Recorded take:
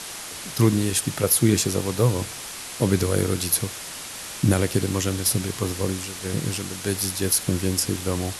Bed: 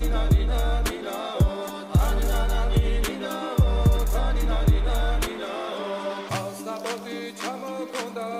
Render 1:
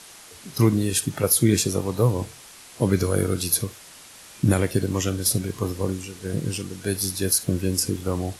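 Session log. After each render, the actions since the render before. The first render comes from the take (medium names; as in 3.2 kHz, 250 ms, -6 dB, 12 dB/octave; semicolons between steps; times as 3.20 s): noise print and reduce 10 dB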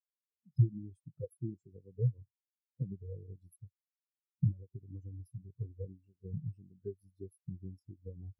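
compression 10:1, threshold -29 dBFS, peak gain reduction 16.5 dB; spectral contrast expander 4:1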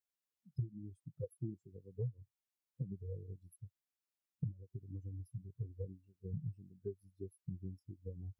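compression, threshold -36 dBFS, peak gain reduction 14.5 dB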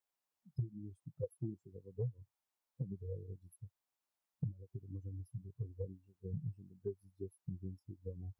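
peaking EQ 850 Hz +9 dB 1.2 oct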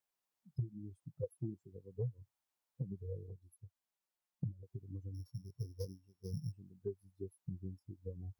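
3.29–4.63 s: touch-sensitive flanger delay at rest 5.7 ms, full sweep at -35.5 dBFS; 5.14–6.52 s: sorted samples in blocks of 8 samples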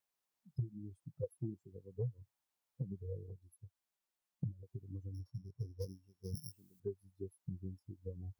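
5.19–5.82 s: low-pass 2.5 kHz 6 dB/octave; 6.35–6.80 s: RIAA curve recording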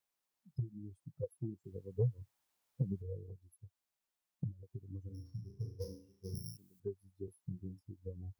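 1.64–3.02 s: gain +6 dB; 5.03–6.57 s: flutter echo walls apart 6.1 m, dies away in 0.46 s; 7.25–7.81 s: doubling 28 ms -7.5 dB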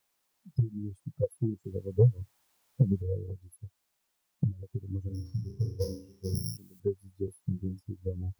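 trim +11 dB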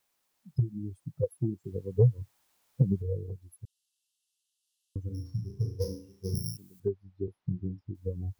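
3.65–4.96 s: brick-wall FIR band-pass 2.6–12 kHz; 6.88–7.95 s: distance through air 230 m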